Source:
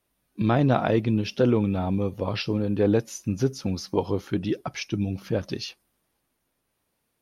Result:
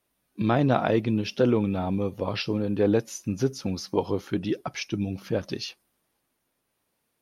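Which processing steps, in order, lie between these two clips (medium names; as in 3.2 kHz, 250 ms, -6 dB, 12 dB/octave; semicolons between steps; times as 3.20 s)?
bass shelf 100 Hz -7.5 dB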